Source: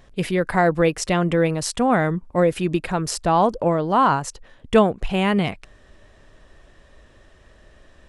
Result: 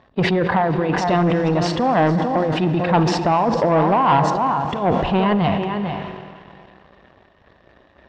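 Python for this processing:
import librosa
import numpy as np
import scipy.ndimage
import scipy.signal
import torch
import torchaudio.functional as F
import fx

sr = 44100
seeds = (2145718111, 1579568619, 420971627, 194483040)

p1 = fx.spec_quant(x, sr, step_db=15)
p2 = scipy.signal.sosfilt(scipy.signal.butter(2, 80.0, 'highpass', fs=sr, output='sos'), p1)
p3 = fx.peak_eq(p2, sr, hz=2500.0, db=-11.0, octaves=1.5)
p4 = p3 + fx.echo_single(p3, sr, ms=448, db=-13.5, dry=0)
p5 = fx.over_compress(p4, sr, threshold_db=-21.0, ratio=-0.5)
p6 = p5 + 0.32 * np.pad(p5, (int(1.1 * sr / 1000.0), 0))[:len(p5)]
p7 = fx.rev_schroeder(p6, sr, rt60_s=3.6, comb_ms=31, drr_db=11.0)
p8 = fx.leveller(p7, sr, passes=2)
p9 = scipy.signal.sosfilt(scipy.signal.butter(4, 3700.0, 'lowpass', fs=sr, output='sos'), p8)
p10 = fx.low_shelf(p9, sr, hz=210.0, db=-9.5)
p11 = fx.sustainer(p10, sr, db_per_s=36.0)
y = p11 * librosa.db_to_amplitude(2.5)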